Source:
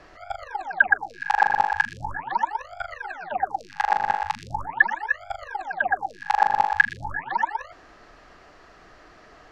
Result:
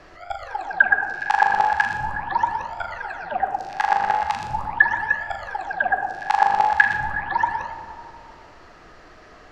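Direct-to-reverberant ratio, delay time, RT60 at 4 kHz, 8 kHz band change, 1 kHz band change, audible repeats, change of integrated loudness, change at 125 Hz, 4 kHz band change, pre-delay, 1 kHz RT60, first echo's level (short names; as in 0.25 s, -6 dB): 5.0 dB, none, 1.3 s, n/a, +3.0 dB, none, +3.0 dB, +4.0 dB, +3.0 dB, 12 ms, 2.1 s, none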